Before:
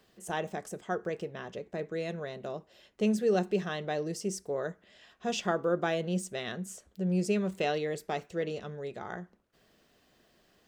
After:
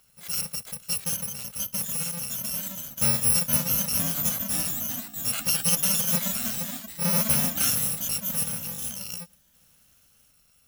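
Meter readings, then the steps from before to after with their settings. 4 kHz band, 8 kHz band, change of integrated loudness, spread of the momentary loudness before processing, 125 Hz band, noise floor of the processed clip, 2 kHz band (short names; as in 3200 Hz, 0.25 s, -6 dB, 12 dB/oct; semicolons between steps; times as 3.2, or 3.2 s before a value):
+11.5 dB, +20.0 dB, +9.0 dB, 12 LU, +3.5 dB, -62 dBFS, +2.0 dB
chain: FFT order left unsorted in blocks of 128 samples; echoes that change speed 0.798 s, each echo +2 st, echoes 3; gain +4 dB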